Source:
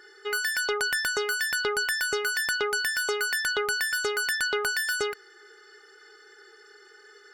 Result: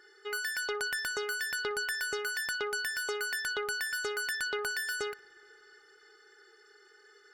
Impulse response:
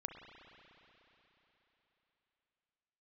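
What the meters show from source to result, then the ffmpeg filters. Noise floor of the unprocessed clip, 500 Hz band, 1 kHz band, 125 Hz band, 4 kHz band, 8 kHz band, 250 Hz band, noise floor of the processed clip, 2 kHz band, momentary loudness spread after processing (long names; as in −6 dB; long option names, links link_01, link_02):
−54 dBFS, −6.5 dB, −7.0 dB, can't be measured, −7.0 dB, −7.0 dB, −6.5 dB, −61 dBFS, −6.5 dB, 2 LU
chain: -filter_complex "[0:a]asplit=2[link_01][link_02];[1:a]atrim=start_sample=2205,highshelf=frequency=3800:gain=-11,adelay=60[link_03];[link_02][link_03]afir=irnorm=-1:irlink=0,volume=-15.5dB[link_04];[link_01][link_04]amix=inputs=2:normalize=0,volume=-7dB"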